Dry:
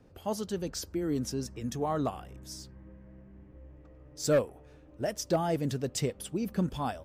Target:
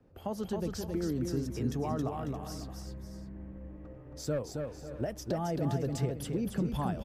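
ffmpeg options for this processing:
ffmpeg -i in.wav -filter_complex "[0:a]alimiter=level_in=1dB:limit=-24dB:level=0:latency=1:release=156,volume=-1dB,acrossover=split=160[link_01][link_02];[link_02]acompressor=threshold=-41dB:ratio=2[link_03];[link_01][link_03]amix=inputs=2:normalize=0,highshelf=frequency=3200:gain=-11,aecho=1:1:271|546|622:0.596|0.211|0.158,dynaudnorm=framelen=130:gausssize=3:maxgain=10dB,equalizer=frequency=12000:width_type=o:width=0.26:gain=7.5,volume=-5dB" out.wav

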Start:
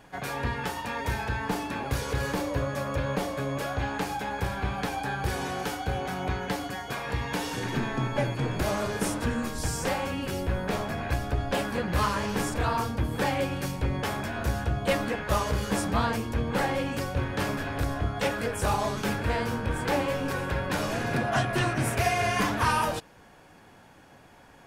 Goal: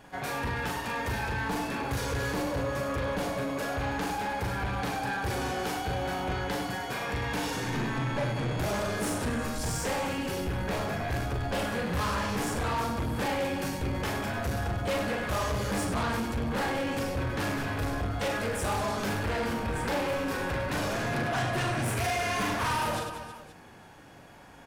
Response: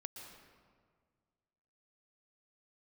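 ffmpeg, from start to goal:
-af "aecho=1:1:40|100|190|325|527.5:0.631|0.398|0.251|0.158|0.1,asoftclip=type=tanh:threshold=-25.5dB"

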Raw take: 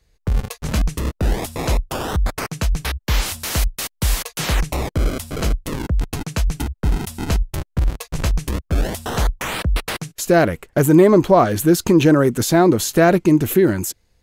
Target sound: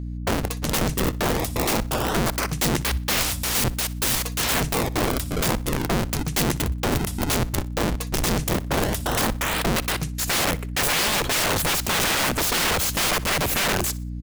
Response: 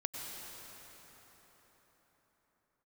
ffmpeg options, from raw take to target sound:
-af "aeval=exprs='val(0)+0.0355*(sin(2*PI*60*n/s)+sin(2*PI*2*60*n/s)/2+sin(2*PI*3*60*n/s)/3+sin(2*PI*4*60*n/s)/4+sin(2*PI*5*60*n/s)/5)':channel_layout=same,aeval=exprs='(mod(7.08*val(0)+1,2)-1)/7.08':channel_layout=same,aecho=1:1:61|122|183:0.1|0.032|0.0102"

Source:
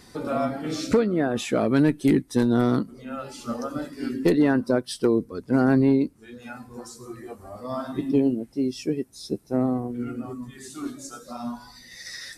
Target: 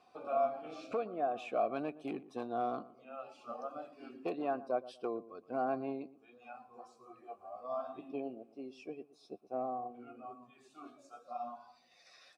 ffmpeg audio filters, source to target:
ffmpeg -i in.wav -filter_complex "[0:a]asplit=3[link_01][link_02][link_03];[link_01]bandpass=frequency=730:width_type=q:width=8,volume=0dB[link_04];[link_02]bandpass=frequency=1090:width_type=q:width=8,volume=-6dB[link_05];[link_03]bandpass=frequency=2440:width_type=q:width=8,volume=-9dB[link_06];[link_04][link_05][link_06]amix=inputs=3:normalize=0,asplit=2[link_07][link_08];[link_08]adelay=119,lowpass=frequency=1100:poles=1,volume=-16dB,asplit=2[link_09][link_10];[link_10]adelay=119,lowpass=frequency=1100:poles=1,volume=0.29,asplit=2[link_11][link_12];[link_12]adelay=119,lowpass=frequency=1100:poles=1,volume=0.29[link_13];[link_07][link_09][link_11][link_13]amix=inputs=4:normalize=0" out.wav

